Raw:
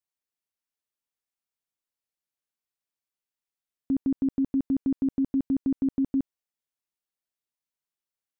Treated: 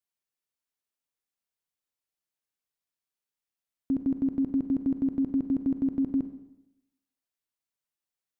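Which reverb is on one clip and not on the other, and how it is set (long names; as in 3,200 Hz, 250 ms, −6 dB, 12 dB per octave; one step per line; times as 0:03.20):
four-comb reverb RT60 0.88 s, combs from 31 ms, DRR 9.5 dB
level −1 dB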